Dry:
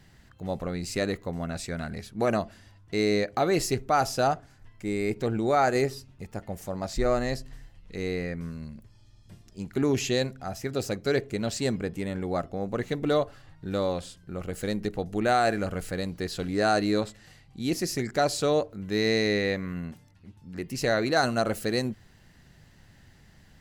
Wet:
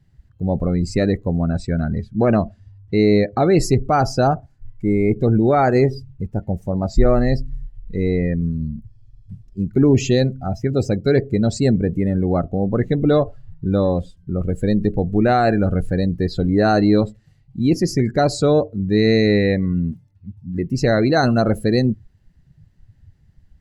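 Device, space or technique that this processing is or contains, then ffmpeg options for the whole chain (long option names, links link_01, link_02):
parallel distortion: -filter_complex "[0:a]asettb=1/sr,asplit=3[link_01][link_02][link_03];[link_01]atrim=end=1.474[link_04];[link_02]atrim=start=1.47:end=3.33,asetpts=PTS-STARTPTS,afade=type=in:duration=0.004:curve=qsin,afade=type=out:start_time=1.856:duration=0.004:curve=qsin,lowpass=8100[link_05];[link_03]atrim=start=3.326[link_06];[link_04][link_05]acrossfade=duration=0.004:curve1=hsin:curve2=qsin[link_07];[link_07][link_06]acrossfade=duration=0.004:curve1=qsin:curve2=hsin,asplit=2[link_08][link_09];[link_09]asoftclip=type=hard:threshold=-28.5dB,volume=-10dB[link_10];[link_08][link_10]amix=inputs=2:normalize=0,afftdn=noise_reduction=20:noise_floor=-35,lowshelf=frequency=360:gain=11.5,volume=3dB"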